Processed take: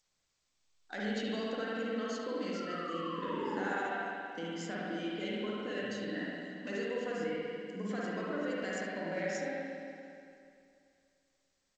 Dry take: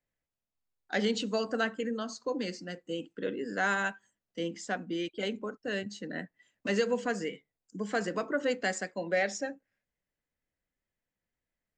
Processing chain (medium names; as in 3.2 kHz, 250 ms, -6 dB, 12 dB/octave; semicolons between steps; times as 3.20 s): de-hum 381.8 Hz, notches 18; in parallel at -2.5 dB: peak limiter -28 dBFS, peak gain reduction 11 dB; on the sum: compression 5:1, threshold -31 dBFS, peak gain reduction 9.5 dB; painted sound fall, 2.54–4.00 s, 680–1400 Hz -41 dBFS; on a send: delay 71 ms -14 dB; on the sum: spring tank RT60 2.5 s, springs 48/58 ms, chirp 25 ms, DRR -6 dB; trim -8.5 dB; G.722 64 kbps 16 kHz